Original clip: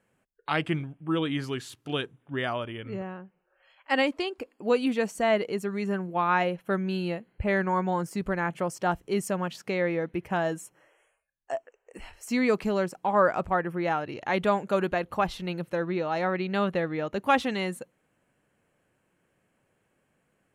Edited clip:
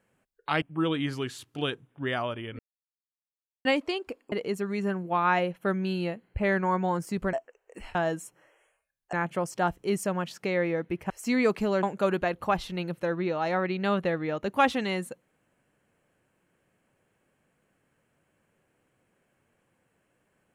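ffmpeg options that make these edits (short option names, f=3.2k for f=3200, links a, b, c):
-filter_complex "[0:a]asplit=10[a][b][c][d][e][f][g][h][i][j];[a]atrim=end=0.622[k];[b]atrim=start=0.928:end=2.9,asetpts=PTS-STARTPTS,afade=t=out:st=1.968:d=0.004:c=hsin[l];[c]atrim=start=2.9:end=3.96,asetpts=PTS-STARTPTS,volume=0[m];[d]atrim=start=3.96:end=4.632,asetpts=PTS-STARTPTS,afade=t=in:d=0.004:c=hsin[n];[e]atrim=start=5.358:end=8.372[o];[f]atrim=start=11.518:end=12.142[p];[g]atrim=start=10.338:end=11.522[q];[h]atrim=start=8.368:end=10.342[r];[i]atrim=start=12.138:end=12.872[s];[j]atrim=start=14.528[t];[l][m][n]concat=n=3:v=0:a=1[u];[k][u]acrossfade=d=0.004:c1=hsin:c2=hsin[v];[v][o]acrossfade=d=0.004:c1=hsin:c2=hsin[w];[w][p]acrossfade=d=0.004:c1=hsin:c2=hsin[x];[x][q]acrossfade=d=0.004:c1=hsin:c2=hsin[y];[y][r]acrossfade=d=0.004:c1=hsin:c2=hsin[z];[z][s]acrossfade=d=0.004:c1=hsin:c2=hsin[aa];[aa][t]acrossfade=d=0.004:c1=hsin:c2=hsin"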